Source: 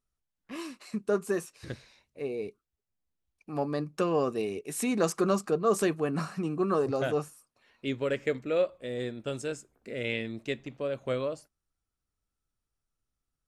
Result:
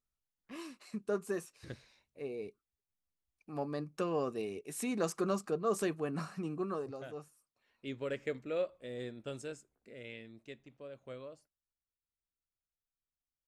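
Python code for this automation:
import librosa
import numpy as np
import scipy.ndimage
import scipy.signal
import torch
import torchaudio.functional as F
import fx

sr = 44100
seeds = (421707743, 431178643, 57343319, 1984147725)

y = fx.gain(x, sr, db=fx.line((6.54, -7.0), (7.06, -17.0), (8.09, -8.0), (9.39, -8.0), (10.11, -16.0)))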